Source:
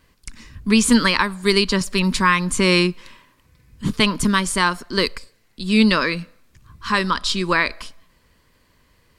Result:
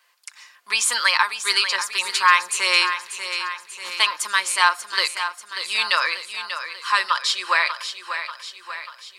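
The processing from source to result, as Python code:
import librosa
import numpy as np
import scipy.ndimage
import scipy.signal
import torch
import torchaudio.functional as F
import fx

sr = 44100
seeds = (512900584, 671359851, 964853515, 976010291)

y = scipy.signal.sosfilt(scipy.signal.butter(4, 730.0, 'highpass', fs=sr, output='sos'), x)
y = y + 0.41 * np.pad(y, (int(5.7 * sr / 1000.0), 0))[:len(y)]
y = fx.echo_feedback(y, sr, ms=589, feedback_pct=56, wet_db=-9.5)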